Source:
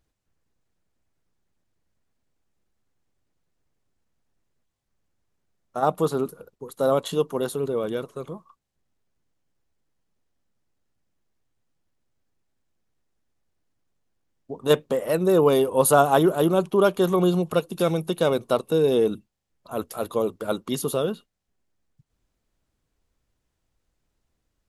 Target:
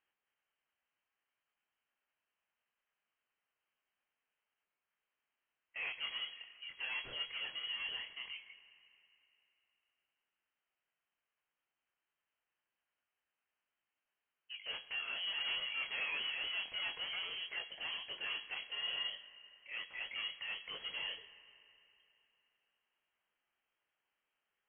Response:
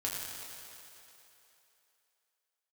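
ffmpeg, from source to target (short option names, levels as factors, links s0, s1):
-filter_complex "[0:a]highpass=f=1500:p=1,aeval=exprs='(tanh(100*val(0)+0.15)-tanh(0.15))/100':c=same,flanger=delay=19.5:depth=7.4:speed=1.3,asplit=2[s0][s1];[1:a]atrim=start_sample=2205[s2];[s1][s2]afir=irnorm=-1:irlink=0,volume=0.224[s3];[s0][s3]amix=inputs=2:normalize=0,lowpass=f=2800:t=q:w=0.5098,lowpass=f=2800:t=q:w=0.6013,lowpass=f=2800:t=q:w=0.9,lowpass=f=2800:t=q:w=2.563,afreqshift=-3300,volume=1.41"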